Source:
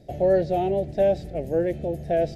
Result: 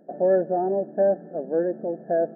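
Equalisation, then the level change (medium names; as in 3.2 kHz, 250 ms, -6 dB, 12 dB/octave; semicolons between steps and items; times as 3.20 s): brick-wall FIR band-pass 170–1800 Hz; 0.0 dB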